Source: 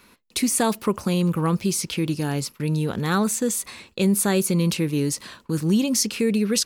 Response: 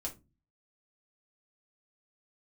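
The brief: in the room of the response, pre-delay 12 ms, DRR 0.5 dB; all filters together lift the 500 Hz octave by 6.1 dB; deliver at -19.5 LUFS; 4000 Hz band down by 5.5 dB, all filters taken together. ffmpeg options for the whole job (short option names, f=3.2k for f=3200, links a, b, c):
-filter_complex "[0:a]equalizer=f=500:t=o:g=7.5,equalizer=f=4k:t=o:g=-7.5,asplit=2[a][b];[1:a]atrim=start_sample=2205,adelay=12[c];[b][c]afir=irnorm=-1:irlink=0,volume=0dB[d];[a][d]amix=inputs=2:normalize=0,volume=-2dB"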